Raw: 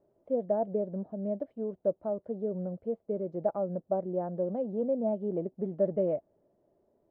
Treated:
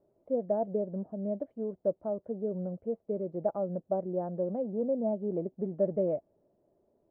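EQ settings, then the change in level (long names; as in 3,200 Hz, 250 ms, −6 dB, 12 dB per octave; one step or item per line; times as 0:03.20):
low-pass filter 1,300 Hz 6 dB per octave
0.0 dB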